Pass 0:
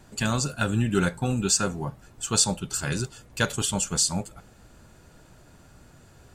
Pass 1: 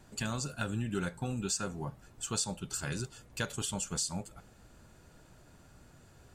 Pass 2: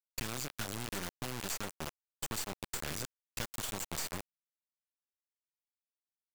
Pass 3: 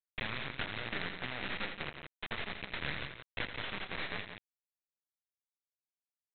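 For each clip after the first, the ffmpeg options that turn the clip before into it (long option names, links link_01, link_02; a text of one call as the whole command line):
ffmpeg -i in.wav -af "acompressor=threshold=-29dB:ratio=2,volume=-5.5dB" out.wav
ffmpeg -i in.wav -filter_complex "[0:a]acrusher=bits=3:dc=4:mix=0:aa=0.000001,acrossover=split=780|3900[link_01][link_02][link_03];[link_01]acompressor=threshold=-45dB:ratio=4[link_04];[link_02]acompressor=threshold=-48dB:ratio=4[link_05];[link_03]acompressor=threshold=-44dB:ratio=4[link_06];[link_04][link_05][link_06]amix=inputs=3:normalize=0,agate=range=-33dB:threshold=-53dB:ratio=3:detection=peak,volume=5.5dB" out.wav
ffmpeg -i in.wav -af "bandpass=frequency=2000:width_type=q:width=3.1:csg=0,aresample=8000,acrusher=bits=6:dc=4:mix=0:aa=0.000001,aresample=44100,aecho=1:1:83|173:0.335|0.398,volume=14.5dB" out.wav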